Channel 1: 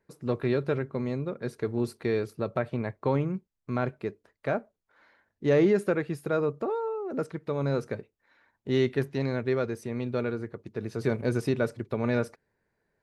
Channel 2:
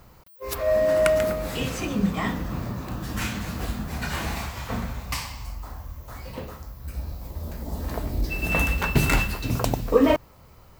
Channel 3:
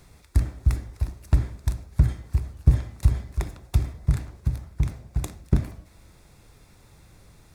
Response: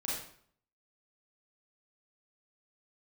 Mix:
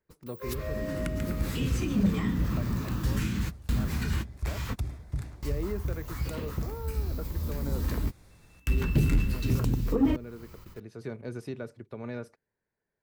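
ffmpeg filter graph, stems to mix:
-filter_complex "[0:a]volume=0.316,asplit=2[s0][s1];[1:a]equalizer=f=670:w=1.7:g=-12.5,volume=1.26[s2];[2:a]adelay=1050,volume=0.596[s3];[s1]apad=whole_len=476194[s4];[s2][s4]sidechaingate=range=0.00891:threshold=0.00158:ratio=16:detection=peak[s5];[s0][s3]amix=inputs=2:normalize=0,asoftclip=type=tanh:threshold=0.178,alimiter=limit=0.075:level=0:latency=1:release=199,volume=1[s6];[s5][s6]amix=inputs=2:normalize=0,acrossover=split=380[s7][s8];[s8]acompressor=threshold=0.0141:ratio=8[s9];[s7][s9]amix=inputs=2:normalize=0,asoftclip=type=tanh:threshold=0.168"

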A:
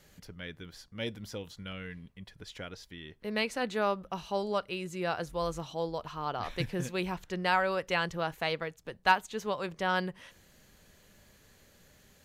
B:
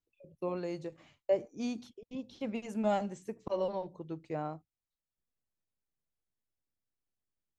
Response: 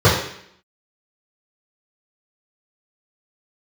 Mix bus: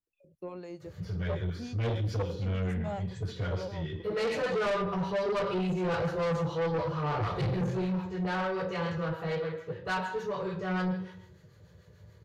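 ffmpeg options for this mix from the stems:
-filter_complex "[0:a]adelay=800,volume=0.211,afade=t=out:st=7.4:d=0.39:silence=0.446684,asplit=2[s0][s1];[s1]volume=0.631[s2];[1:a]volume=0.708[s3];[2:a]atrim=start_sample=2205[s4];[s2][s4]afir=irnorm=-1:irlink=0[s5];[s0][s3][s5]amix=inputs=3:normalize=0,acrossover=split=780[s6][s7];[s6]aeval=exprs='val(0)*(1-0.5/2+0.5/2*cos(2*PI*6.8*n/s))':c=same[s8];[s7]aeval=exprs='val(0)*(1-0.5/2-0.5/2*cos(2*PI*6.8*n/s))':c=same[s9];[s8][s9]amix=inputs=2:normalize=0,asoftclip=type=tanh:threshold=0.0473"

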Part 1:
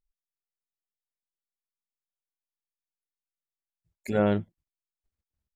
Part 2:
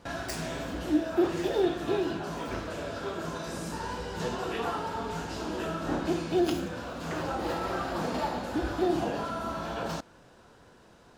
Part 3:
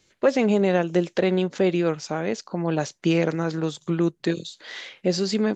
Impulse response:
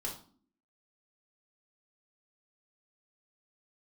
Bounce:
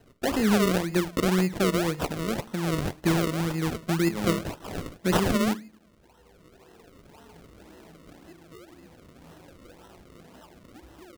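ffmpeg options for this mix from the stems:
-filter_complex "[0:a]highpass=f=140:w=0.5412,highpass=f=140:w=1.3066,equalizer=f=470:w=0.31:g=-8.5,acrusher=bits=2:mode=log:mix=0:aa=0.000001,volume=1.26[s0];[1:a]acompressor=threshold=0.0178:ratio=6,adelay=2200,volume=0.299,asplit=2[s1][s2];[s2]volume=0.15[s3];[2:a]highshelf=f=3000:g=10.5,volume=0.944,asplit=3[s4][s5][s6];[s5]volume=0.211[s7];[s6]apad=whole_len=589859[s8];[s1][s8]sidechaincompress=threshold=0.0126:ratio=8:attack=40:release=1210[s9];[3:a]atrim=start_sample=2205[s10];[s3][s7]amix=inputs=2:normalize=0[s11];[s11][s10]afir=irnorm=-1:irlink=0[s12];[s0][s9][s4][s12]amix=inputs=4:normalize=0,acrossover=split=340|3000[s13][s14][s15];[s14]acompressor=threshold=0.00112:ratio=1.5[s16];[s13][s16][s15]amix=inputs=3:normalize=0,acrusher=samples=37:mix=1:aa=0.000001:lfo=1:lforange=37:lforate=1.9"

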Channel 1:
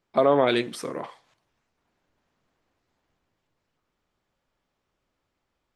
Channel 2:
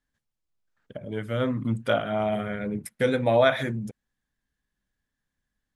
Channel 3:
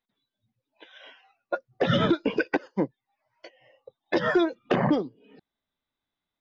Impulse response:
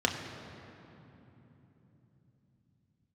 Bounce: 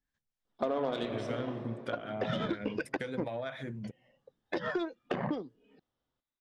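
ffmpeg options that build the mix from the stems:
-filter_complex "[0:a]adelay=450,volume=0.299,asplit=2[s0][s1];[s1]volume=0.376[s2];[1:a]acrossover=split=600[s3][s4];[s3]aeval=exprs='val(0)*(1-0.5/2+0.5/2*cos(2*PI*4.1*n/s))':c=same[s5];[s4]aeval=exprs='val(0)*(1-0.5/2-0.5/2*cos(2*PI*4.1*n/s))':c=same[s6];[s5][s6]amix=inputs=2:normalize=0,acompressor=threshold=0.0282:ratio=12,volume=0.944,asplit=2[s7][s8];[2:a]adelay=400,volume=0.473[s9];[s8]apad=whole_len=273487[s10];[s0][s10]sidechaincompress=threshold=0.00316:ratio=8:attack=44:release=140[s11];[3:a]atrim=start_sample=2205[s12];[s2][s12]afir=irnorm=-1:irlink=0[s13];[s11][s7][s9][s13]amix=inputs=4:normalize=0,lowpass=7600,aeval=exprs='0.211*(cos(1*acos(clip(val(0)/0.211,-1,1)))-cos(1*PI/2))+0.00944*(cos(7*acos(clip(val(0)/0.211,-1,1)))-cos(7*PI/2))':c=same,acompressor=threshold=0.0355:ratio=4"

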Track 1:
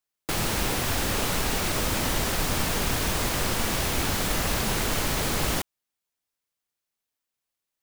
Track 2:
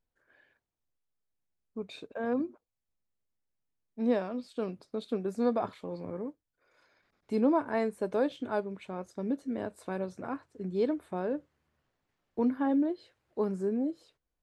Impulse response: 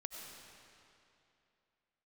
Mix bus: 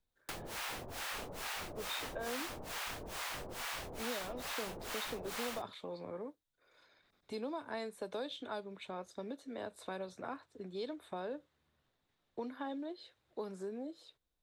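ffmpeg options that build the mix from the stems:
-filter_complex "[0:a]acrossover=split=670[s0][s1];[s0]aeval=exprs='val(0)*(1-1/2+1/2*cos(2*PI*2.3*n/s))':c=same[s2];[s1]aeval=exprs='val(0)*(1-1/2-1/2*cos(2*PI*2.3*n/s))':c=same[s3];[s2][s3]amix=inputs=2:normalize=0,volume=0.422[s4];[1:a]equalizer=f=3700:t=o:w=0.28:g=10.5,acrossover=split=250|3000[s5][s6][s7];[s6]acompressor=threshold=0.02:ratio=6[s8];[s5][s8][s7]amix=inputs=3:normalize=0,volume=0.891[s9];[s4][s9]amix=inputs=2:normalize=0,acrossover=split=450|4000[s10][s11][s12];[s10]acompressor=threshold=0.00282:ratio=4[s13];[s11]acompressor=threshold=0.0141:ratio=4[s14];[s12]acompressor=threshold=0.00447:ratio=4[s15];[s13][s14][s15]amix=inputs=3:normalize=0"

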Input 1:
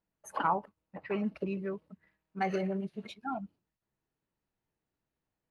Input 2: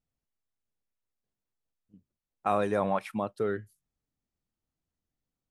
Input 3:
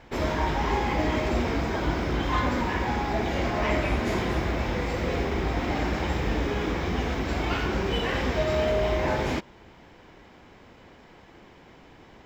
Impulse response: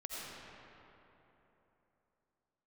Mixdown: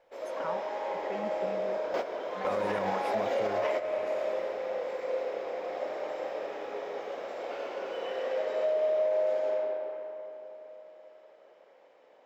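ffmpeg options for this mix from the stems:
-filter_complex "[0:a]volume=0.355[s0];[1:a]volume=0.891,asplit=3[s1][s2][s3];[s2]volume=0.133[s4];[2:a]highpass=f=540:t=q:w=5.9,volume=0.708,asplit=2[s5][s6];[s6]volume=0.282[s7];[s3]apad=whole_len=540628[s8];[s5][s8]sidechaingate=range=0.0224:threshold=0.00126:ratio=16:detection=peak[s9];[3:a]atrim=start_sample=2205[s10];[s4][s7]amix=inputs=2:normalize=0[s11];[s11][s10]afir=irnorm=-1:irlink=0[s12];[s0][s1][s9][s12]amix=inputs=4:normalize=0,alimiter=limit=0.0891:level=0:latency=1:release=168"

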